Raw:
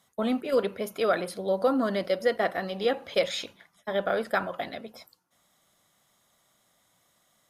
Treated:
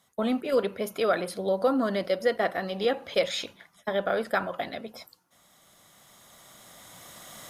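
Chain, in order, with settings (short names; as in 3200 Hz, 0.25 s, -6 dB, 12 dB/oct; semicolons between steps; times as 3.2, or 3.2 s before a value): recorder AGC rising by 8 dB/s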